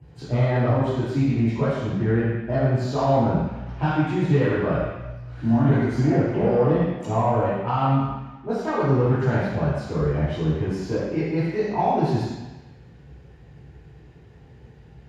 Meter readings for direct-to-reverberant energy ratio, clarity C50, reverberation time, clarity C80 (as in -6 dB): -11.0 dB, -2.0 dB, 1.1 s, 0.5 dB